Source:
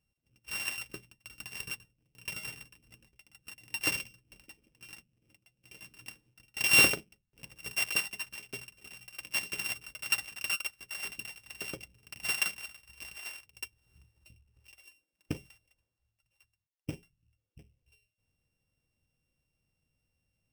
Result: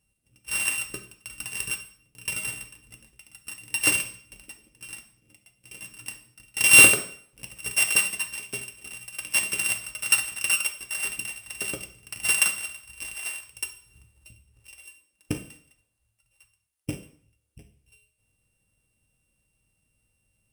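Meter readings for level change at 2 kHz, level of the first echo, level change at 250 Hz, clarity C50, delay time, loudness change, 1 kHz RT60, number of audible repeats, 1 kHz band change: +8.5 dB, none, +6.5 dB, 11.0 dB, none, +9.5 dB, 0.55 s, none, +6.5 dB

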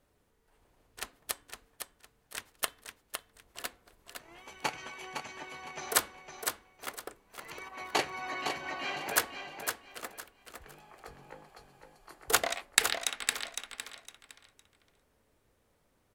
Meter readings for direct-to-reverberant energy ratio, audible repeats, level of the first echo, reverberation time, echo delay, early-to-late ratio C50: none, 3, -6.5 dB, none, 0.509 s, none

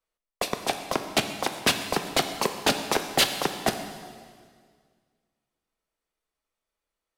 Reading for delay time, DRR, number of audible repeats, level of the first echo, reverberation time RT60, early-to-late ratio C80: none, 6.5 dB, none, none, 1.9 s, 9.5 dB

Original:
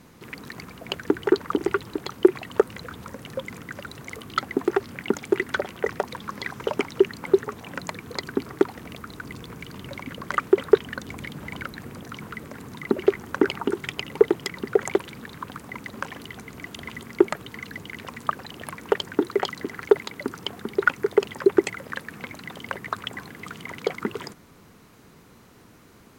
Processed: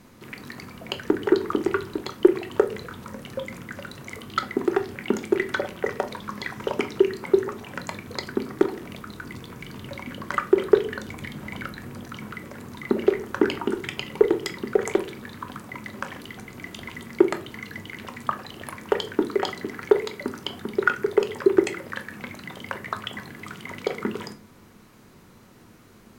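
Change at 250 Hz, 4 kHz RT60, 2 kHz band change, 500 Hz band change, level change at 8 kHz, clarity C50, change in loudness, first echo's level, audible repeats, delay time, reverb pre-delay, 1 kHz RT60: +1.0 dB, 0.30 s, -0.5 dB, 0.0 dB, -0.5 dB, 15.0 dB, 0.0 dB, none, none, none, 3 ms, 0.35 s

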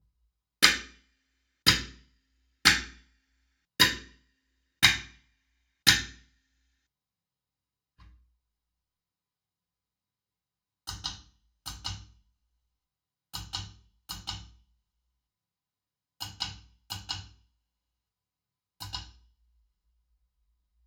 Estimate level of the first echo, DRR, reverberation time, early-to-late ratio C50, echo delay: none, -13.0 dB, 0.45 s, 8.0 dB, none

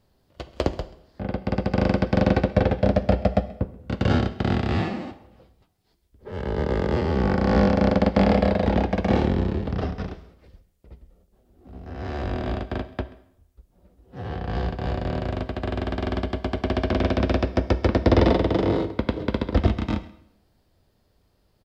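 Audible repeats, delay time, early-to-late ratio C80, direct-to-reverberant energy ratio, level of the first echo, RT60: 1, 0.133 s, 16.5 dB, 11.5 dB, -21.0 dB, 0.75 s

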